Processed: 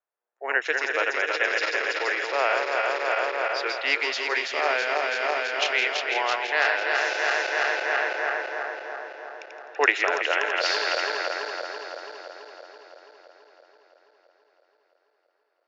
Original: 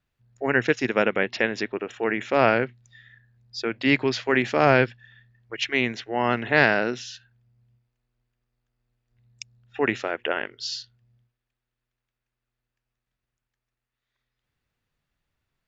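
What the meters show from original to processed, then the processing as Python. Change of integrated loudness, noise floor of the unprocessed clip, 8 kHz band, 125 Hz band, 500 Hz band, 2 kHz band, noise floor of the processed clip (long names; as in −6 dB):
−1.0 dB, −85 dBFS, can't be measured, below −40 dB, −2.0 dB, +3.5 dB, −72 dBFS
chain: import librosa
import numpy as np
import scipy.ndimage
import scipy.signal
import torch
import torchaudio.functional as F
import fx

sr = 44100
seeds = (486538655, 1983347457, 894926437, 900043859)

p1 = fx.reverse_delay_fb(x, sr, ms=166, feedback_pct=83, wet_db=-3.5)
p2 = fx.env_lowpass(p1, sr, base_hz=960.0, full_db=-17.5)
p3 = fx.rider(p2, sr, range_db=10, speed_s=0.5)
p4 = scipy.signal.sosfilt(scipy.signal.bessel(8, 710.0, 'highpass', norm='mag', fs=sr, output='sos'), p3)
y = p4 + fx.echo_wet_highpass(p4, sr, ms=166, feedback_pct=71, hz=3100.0, wet_db=-11, dry=0)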